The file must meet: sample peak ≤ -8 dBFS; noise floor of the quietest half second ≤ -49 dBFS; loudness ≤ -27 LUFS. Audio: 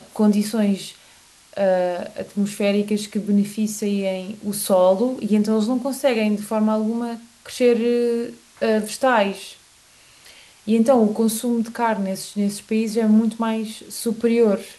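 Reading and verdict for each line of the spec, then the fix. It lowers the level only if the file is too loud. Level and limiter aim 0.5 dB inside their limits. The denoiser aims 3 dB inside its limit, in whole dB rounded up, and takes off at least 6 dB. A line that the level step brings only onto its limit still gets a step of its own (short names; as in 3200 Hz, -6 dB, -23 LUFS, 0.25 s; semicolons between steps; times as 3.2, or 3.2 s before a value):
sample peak -5.5 dBFS: fail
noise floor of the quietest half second -52 dBFS: OK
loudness -21.0 LUFS: fail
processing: gain -6.5 dB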